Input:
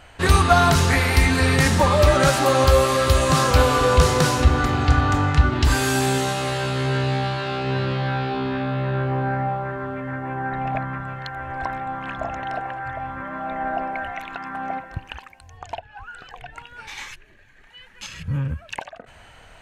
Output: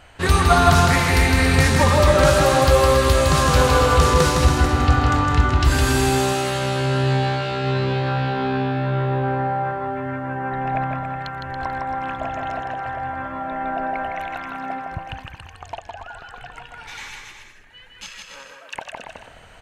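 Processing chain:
0:18.09–0:18.75: high-pass filter 520 Hz 24 dB per octave
on a send: bouncing-ball delay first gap 160 ms, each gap 0.75×, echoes 5
on the sum: level −1 dB

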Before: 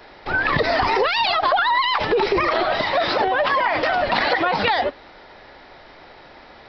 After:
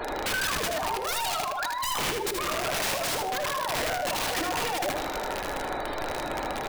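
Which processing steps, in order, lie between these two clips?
gate on every frequency bin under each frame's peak −15 dB strong
thirty-one-band graphic EQ 100 Hz −3 dB, 160 Hz −9 dB, 2,000 Hz −9 dB
compressor whose output falls as the input rises −32 dBFS, ratio −1
wrap-around overflow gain 26.5 dB
repeating echo 78 ms, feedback 27%, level −5 dB
on a send at −11 dB: convolution reverb RT60 1.5 s, pre-delay 7 ms
on the sum: level +2.5 dB

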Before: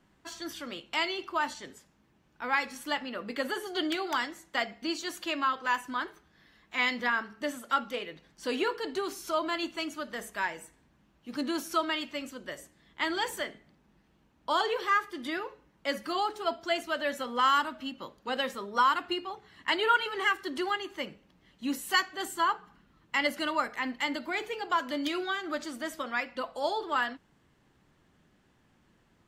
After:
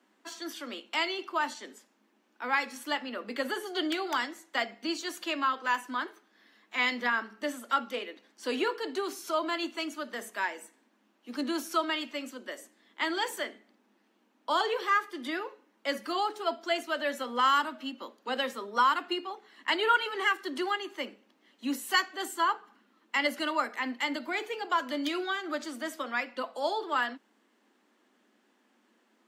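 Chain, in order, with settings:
Butterworth high-pass 210 Hz 96 dB per octave

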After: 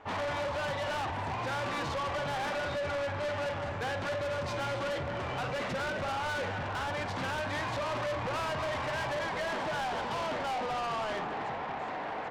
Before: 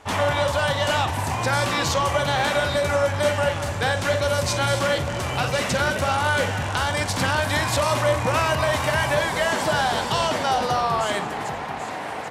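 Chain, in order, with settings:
Bessel low-pass filter 2,000 Hz, order 2
low-shelf EQ 160 Hz −8 dB
soft clipping −28.5 dBFS, distortion −7 dB
level −2.5 dB

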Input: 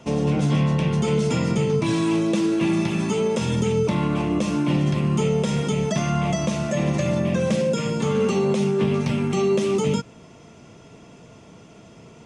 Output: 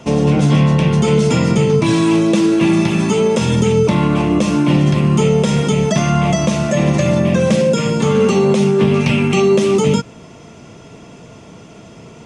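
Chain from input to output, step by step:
0:08.96–0:09.40: parametric band 2,600 Hz +9 dB 0.5 octaves
level +8 dB

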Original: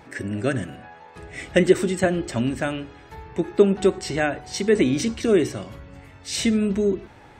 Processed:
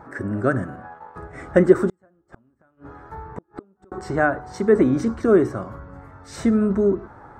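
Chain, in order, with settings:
high shelf with overshoot 1,900 Hz −13 dB, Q 3
0:00.76–0:01.37: transient designer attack +2 dB, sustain −11 dB
0:01.89–0:03.92: gate with flip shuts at −20 dBFS, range −40 dB
level +2 dB

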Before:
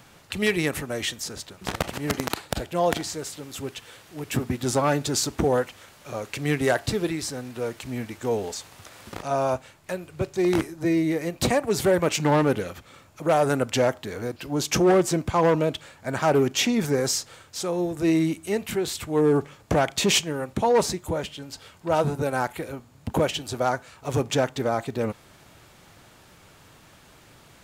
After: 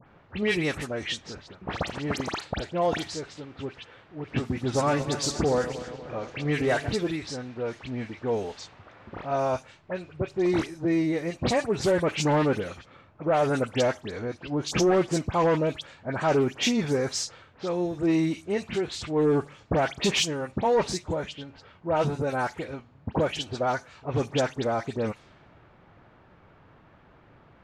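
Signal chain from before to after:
0:04.42–0:06.88: feedback delay that plays each chunk backwards 119 ms, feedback 72%, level −12 dB
low-pass filter 6,500 Hz 12 dB per octave
low-pass that shuts in the quiet parts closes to 1,500 Hz, open at −21.5 dBFS
all-pass dispersion highs, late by 72 ms, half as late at 2,500 Hz
soft clipping −11.5 dBFS, distortion −23 dB
level −1.5 dB

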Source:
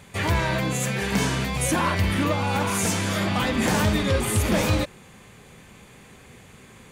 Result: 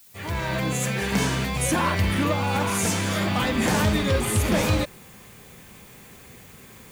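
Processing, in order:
fade in at the beginning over 0.68 s
background noise blue −52 dBFS

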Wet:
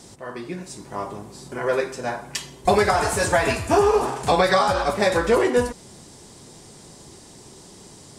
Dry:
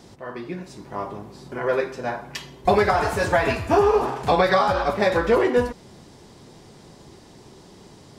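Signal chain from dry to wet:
parametric band 8,600 Hz +14 dB 1.1 octaves

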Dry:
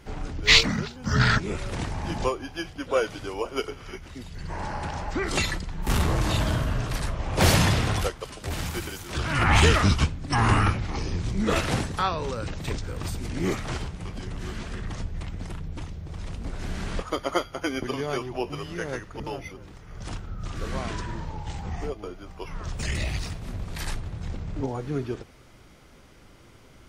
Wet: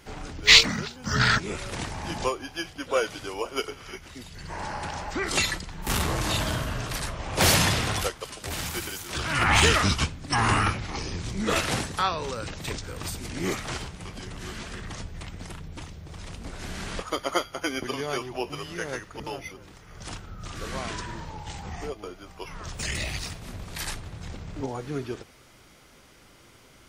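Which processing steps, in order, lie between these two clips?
spectral tilt +1.5 dB per octave

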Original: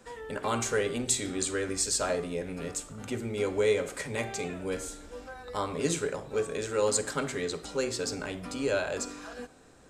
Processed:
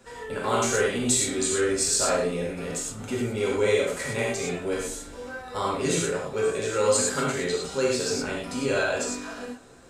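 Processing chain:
reverb whose tail is shaped and stops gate 140 ms flat, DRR −4.5 dB

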